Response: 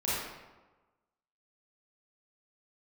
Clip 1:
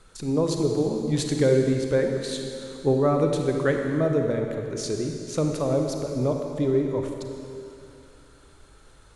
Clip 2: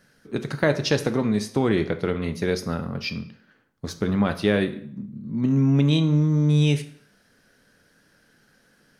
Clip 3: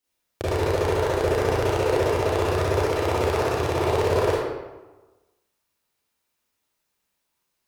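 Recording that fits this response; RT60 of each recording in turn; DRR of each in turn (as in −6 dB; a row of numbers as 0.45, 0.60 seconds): 3; 2.7, 0.60, 1.2 seconds; 3.0, 8.5, −10.0 decibels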